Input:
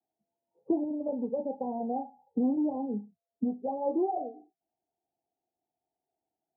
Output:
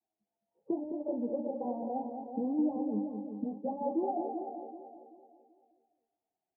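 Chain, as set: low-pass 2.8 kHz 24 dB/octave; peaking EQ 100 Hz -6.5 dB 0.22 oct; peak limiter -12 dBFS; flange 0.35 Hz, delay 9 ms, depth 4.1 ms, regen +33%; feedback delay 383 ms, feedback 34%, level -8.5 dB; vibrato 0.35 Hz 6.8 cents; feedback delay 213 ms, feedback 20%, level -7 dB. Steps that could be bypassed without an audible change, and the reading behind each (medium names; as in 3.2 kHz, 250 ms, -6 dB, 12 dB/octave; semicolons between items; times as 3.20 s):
low-pass 2.8 kHz: input has nothing above 910 Hz; peak limiter -12 dBFS: peak at its input -18.0 dBFS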